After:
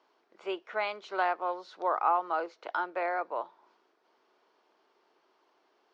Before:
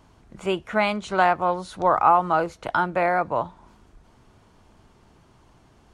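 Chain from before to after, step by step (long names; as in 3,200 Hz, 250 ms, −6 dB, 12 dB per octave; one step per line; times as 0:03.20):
elliptic band-pass filter 370–5,200 Hz, stop band 60 dB
level −9 dB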